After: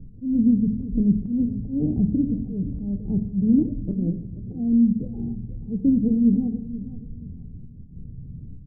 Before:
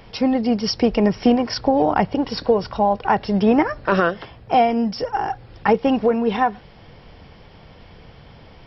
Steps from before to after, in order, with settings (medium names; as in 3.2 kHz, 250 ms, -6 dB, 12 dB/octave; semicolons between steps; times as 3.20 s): inverse Chebyshev low-pass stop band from 1.1 kHz, stop band 70 dB; peak limiter -20 dBFS, peak gain reduction 8.5 dB; slow attack 171 ms; feedback delay 481 ms, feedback 24%, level -15 dB; simulated room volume 140 m³, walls mixed, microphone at 0.33 m; trim +7 dB